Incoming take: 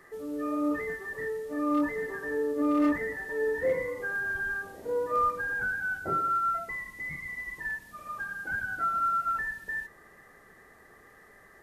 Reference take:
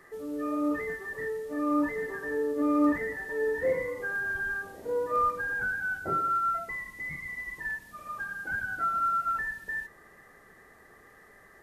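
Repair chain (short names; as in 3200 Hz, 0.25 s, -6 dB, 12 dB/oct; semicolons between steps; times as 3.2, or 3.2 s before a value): clip repair -19.5 dBFS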